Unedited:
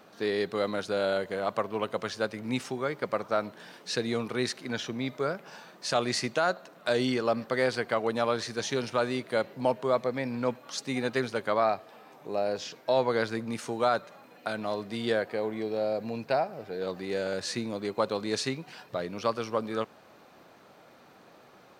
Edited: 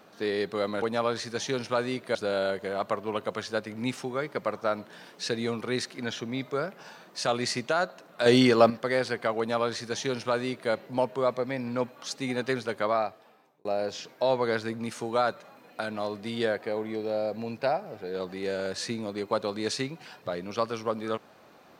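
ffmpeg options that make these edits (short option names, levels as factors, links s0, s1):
-filter_complex "[0:a]asplit=6[s0][s1][s2][s3][s4][s5];[s0]atrim=end=0.822[s6];[s1]atrim=start=8.048:end=9.382[s7];[s2]atrim=start=0.818:end=6.932[s8];[s3]atrim=start=6.928:end=7.372,asetpts=PTS-STARTPTS,volume=2.51[s9];[s4]atrim=start=7.368:end=12.32,asetpts=PTS-STARTPTS,afade=t=out:st=4.162:d=0.79[s10];[s5]atrim=start=12.32,asetpts=PTS-STARTPTS,afade=t=in:d=0.004:c=hsin[s11];[s6][s7]acrossfade=d=0.004:c1=hsin:c2=hsin[s12];[s12][s8]acrossfade=d=0.004:c1=hsin:c2=hsin[s13];[s13][s9]acrossfade=d=0.004:c1=hsin:c2=hsin[s14];[s10][s11]concat=n=2:v=0:a=1[s15];[s14][s15]acrossfade=d=0.004:c1=hsin:c2=hsin"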